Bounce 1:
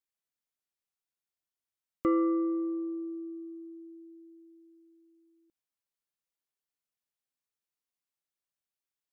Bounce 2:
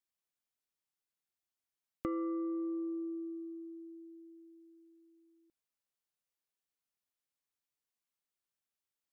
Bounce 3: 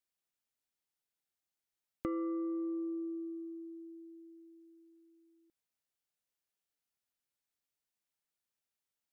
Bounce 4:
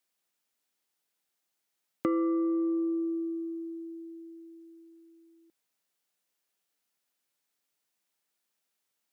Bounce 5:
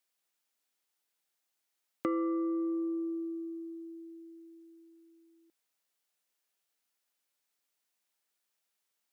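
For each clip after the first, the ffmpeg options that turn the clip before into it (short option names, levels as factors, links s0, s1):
-af "acompressor=threshold=0.0224:ratio=6,volume=0.841"
-af "bandreject=f=1100:w=12"
-af "highpass=170,volume=2.66"
-af "lowshelf=f=270:g=-7.5,volume=0.891"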